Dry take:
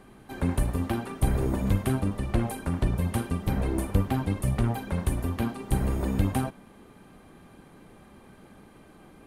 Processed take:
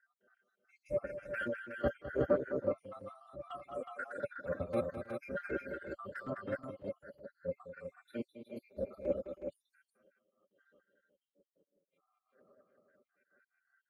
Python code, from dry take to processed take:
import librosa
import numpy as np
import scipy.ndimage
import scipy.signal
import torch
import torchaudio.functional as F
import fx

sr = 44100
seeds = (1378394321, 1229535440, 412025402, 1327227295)

y = fx.spec_dropout(x, sr, seeds[0], share_pct=82)
y = fx.double_bandpass(y, sr, hz=900.0, octaves=1.3)
y = fx.peak_eq(y, sr, hz=920.0, db=-3.0, octaves=0.71)
y = fx.transient(y, sr, attack_db=-7, sustain_db=-11)
y = fx.stretch_vocoder(y, sr, factor=1.5)
y = fx.echo_multitap(y, sr, ms=(210, 320, 368), db=(-7.5, -18.5, -4.5))
y = fx.band_widen(y, sr, depth_pct=70)
y = F.gain(torch.from_numpy(y), 14.5).numpy()